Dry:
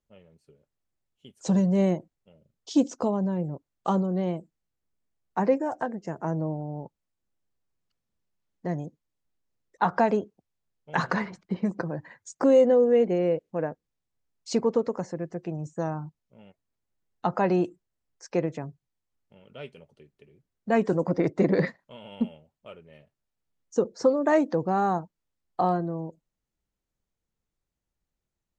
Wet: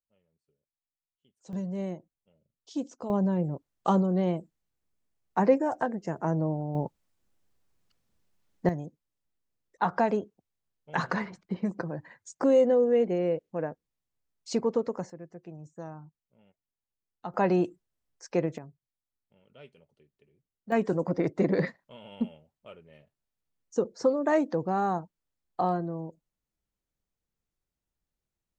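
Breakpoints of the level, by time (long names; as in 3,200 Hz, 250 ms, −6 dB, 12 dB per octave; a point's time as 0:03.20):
−19.5 dB
from 0:01.53 −11 dB
from 0:03.10 +1 dB
from 0:06.75 +8 dB
from 0:08.69 −3 dB
from 0:15.10 −11.5 dB
from 0:17.34 −1 dB
from 0:18.58 −10 dB
from 0:20.72 −3 dB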